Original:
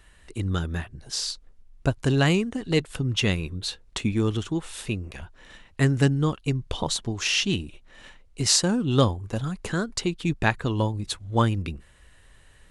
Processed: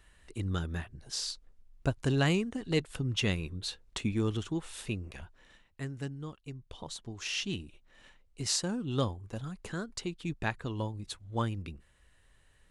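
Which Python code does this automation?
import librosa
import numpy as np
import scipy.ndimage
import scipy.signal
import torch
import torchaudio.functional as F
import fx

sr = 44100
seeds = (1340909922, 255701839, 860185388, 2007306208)

y = fx.gain(x, sr, db=fx.line((5.2, -6.5), (5.86, -18.0), (6.65, -18.0), (7.38, -10.5)))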